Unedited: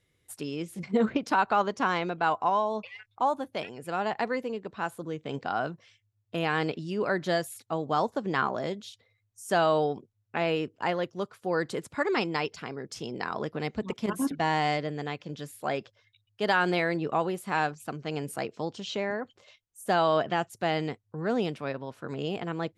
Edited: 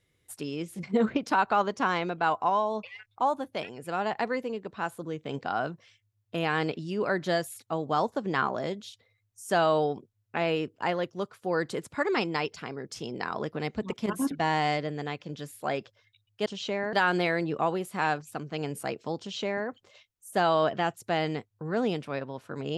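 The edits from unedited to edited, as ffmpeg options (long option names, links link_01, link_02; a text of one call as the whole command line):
ffmpeg -i in.wav -filter_complex "[0:a]asplit=3[link_01][link_02][link_03];[link_01]atrim=end=16.462[link_04];[link_02]atrim=start=18.728:end=19.202[link_05];[link_03]atrim=start=16.458[link_06];[link_04][link_05]acrossfade=duration=0.004:curve1=hsin:curve2=hsin[link_07];[link_07][link_06]acrossfade=duration=0.004:curve1=hsin:curve2=hsin" out.wav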